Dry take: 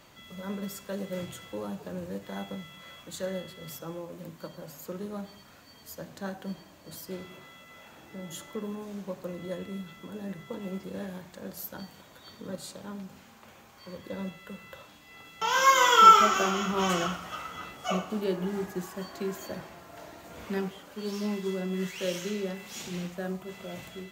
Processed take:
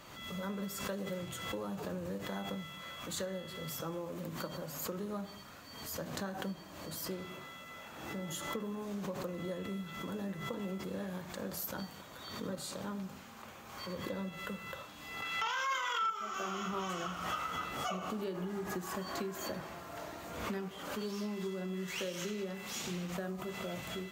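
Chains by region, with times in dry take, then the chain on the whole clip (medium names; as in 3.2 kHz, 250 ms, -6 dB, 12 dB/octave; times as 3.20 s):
15.22–16.10 s: peaking EQ 2.1 kHz +12 dB 2.8 oct + transient shaper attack -10 dB, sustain +10 dB
whole clip: compression 8:1, threshold -37 dBFS; peaking EQ 1.2 kHz +4 dB 0.36 oct; swell ahead of each attack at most 48 dB/s; trim +1 dB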